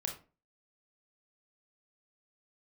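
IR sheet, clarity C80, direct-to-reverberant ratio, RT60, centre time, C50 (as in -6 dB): 14.5 dB, 1.5 dB, 0.35 s, 19 ms, 8.5 dB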